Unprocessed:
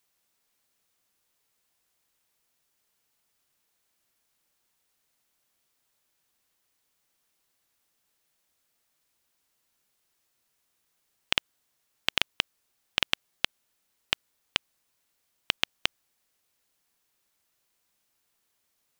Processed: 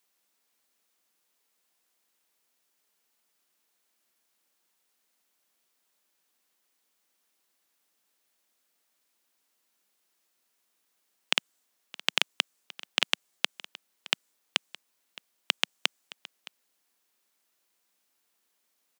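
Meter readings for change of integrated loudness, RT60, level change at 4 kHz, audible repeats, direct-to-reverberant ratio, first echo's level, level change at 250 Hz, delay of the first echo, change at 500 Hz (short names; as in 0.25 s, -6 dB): +0.5 dB, none, +0.5 dB, 1, none, -19.5 dB, -0.5 dB, 0.617 s, 0.0 dB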